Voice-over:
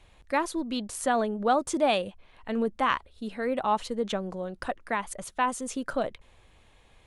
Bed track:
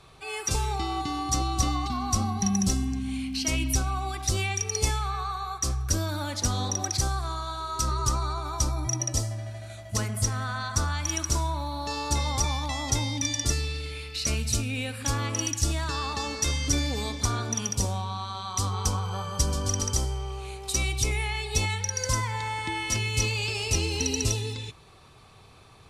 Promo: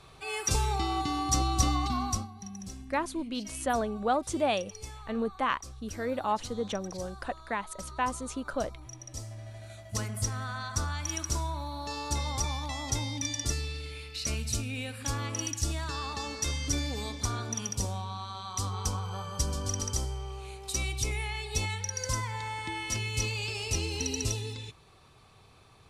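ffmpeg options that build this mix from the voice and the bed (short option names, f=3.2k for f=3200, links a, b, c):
-filter_complex "[0:a]adelay=2600,volume=-3.5dB[a];[1:a]volume=12dB,afade=t=out:st=2:d=0.28:silence=0.141254,afade=t=in:st=9.05:d=0.64:silence=0.237137[b];[a][b]amix=inputs=2:normalize=0"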